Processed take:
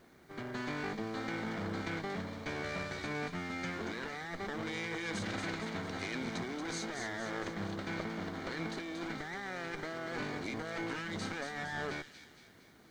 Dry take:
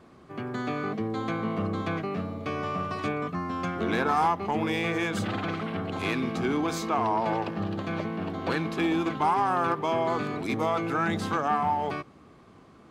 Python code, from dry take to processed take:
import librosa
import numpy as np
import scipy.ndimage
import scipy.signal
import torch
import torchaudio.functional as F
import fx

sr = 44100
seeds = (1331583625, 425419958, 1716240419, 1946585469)

p1 = fx.lower_of_two(x, sr, delay_ms=0.47)
p2 = scipy.signal.sosfilt(scipy.signal.butter(4, 8400.0, 'lowpass', fs=sr, output='sos'), p1)
p3 = fx.low_shelf(p2, sr, hz=400.0, db=-7.0)
p4 = fx.notch(p3, sr, hz=2600.0, q=7.4)
p5 = fx.over_compress(p4, sr, threshold_db=-34.0, ratio=-1.0)
p6 = fx.quant_dither(p5, sr, seeds[0], bits=12, dither='triangular')
p7 = p6 + fx.echo_wet_highpass(p6, sr, ms=231, feedback_pct=51, hz=3300.0, wet_db=-5, dry=0)
y = F.gain(torch.from_numpy(p7), -4.5).numpy()